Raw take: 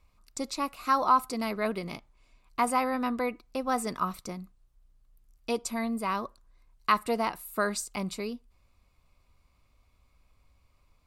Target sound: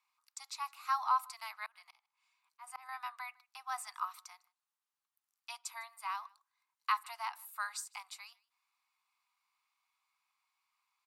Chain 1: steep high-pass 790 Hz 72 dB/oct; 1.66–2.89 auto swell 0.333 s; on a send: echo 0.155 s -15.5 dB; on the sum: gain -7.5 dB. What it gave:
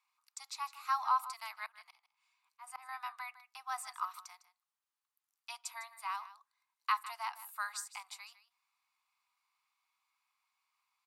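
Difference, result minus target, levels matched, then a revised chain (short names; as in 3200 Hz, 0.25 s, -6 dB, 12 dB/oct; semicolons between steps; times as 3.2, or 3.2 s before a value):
echo-to-direct +11 dB
steep high-pass 790 Hz 72 dB/oct; 1.66–2.89 auto swell 0.333 s; on a send: echo 0.155 s -26.5 dB; on the sum: gain -7.5 dB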